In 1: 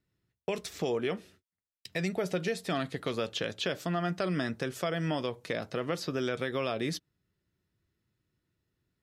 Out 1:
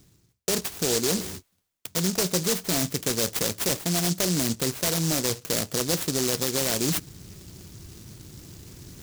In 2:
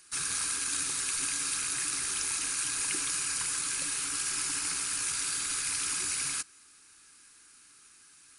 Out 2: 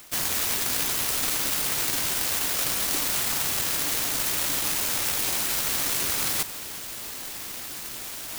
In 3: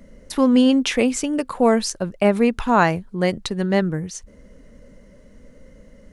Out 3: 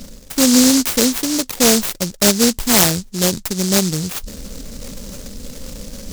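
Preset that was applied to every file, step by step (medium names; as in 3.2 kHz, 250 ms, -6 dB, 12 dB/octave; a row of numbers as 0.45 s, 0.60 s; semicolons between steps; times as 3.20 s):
reverse; upward compressor, threshold -21 dBFS; reverse; delay time shaken by noise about 5.7 kHz, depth 0.3 ms; trim +3 dB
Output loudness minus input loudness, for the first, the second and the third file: +8.5 LU, +5.5 LU, +4.5 LU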